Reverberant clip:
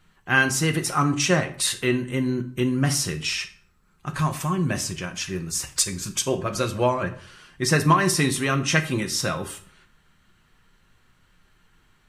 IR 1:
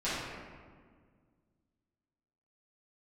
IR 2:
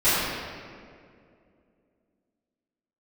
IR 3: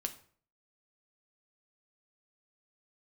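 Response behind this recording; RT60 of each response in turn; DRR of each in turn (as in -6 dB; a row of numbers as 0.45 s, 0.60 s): 3; 1.8 s, 2.3 s, 0.50 s; -13.0 dB, -17.5 dB, 5.5 dB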